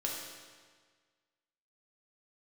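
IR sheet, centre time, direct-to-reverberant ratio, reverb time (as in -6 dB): 76 ms, -3.0 dB, 1.6 s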